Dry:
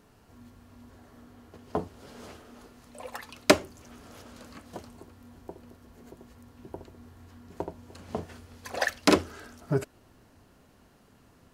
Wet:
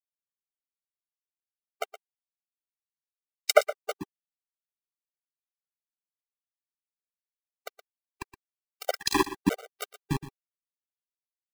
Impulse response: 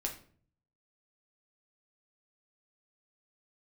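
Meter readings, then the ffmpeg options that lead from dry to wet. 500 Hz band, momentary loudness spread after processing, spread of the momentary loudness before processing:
0.0 dB, 24 LU, 24 LU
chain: -filter_complex "[0:a]acrossover=split=340|2400[a][b][c];[b]adelay=70[d];[a]adelay=390[e];[e][d][c]amix=inputs=3:normalize=0,aeval=exprs='val(0)*gte(abs(val(0)),0.0708)':c=same,asplit=2[f][g];[g]aecho=0:1:119:0.188[h];[f][h]amix=inputs=2:normalize=0,afftfilt=real='re*gt(sin(2*PI*1*pts/sr)*(1-2*mod(floor(b*sr/1024/390),2)),0)':imag='im*gt(sin(2*PI*1*pts/sr)*(1-2*mod(floor(b*sr/1024/390),2)),0)':win_size=1024:overlap=0.75,volume=4.5dB"

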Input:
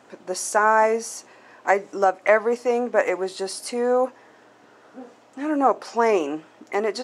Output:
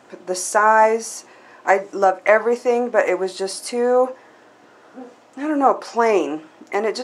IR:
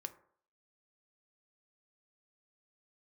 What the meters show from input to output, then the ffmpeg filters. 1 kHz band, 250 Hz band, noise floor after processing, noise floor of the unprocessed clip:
+4.0 dB, +3.0 dB, -50 dBFS, -53 dBFS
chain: -filter_complex "[0:a]asplit=2[a][b];[1:a]atrim=start_sample=2205,afade=t=out:st=0.14:d=0.01,atrim=end_sample=6615[c];[b][c]afir=irnorm=-1:irlink=0,volume=7.5dB[d];[a][d]amix=inputs=2:normalize=0,volume=-5dB"

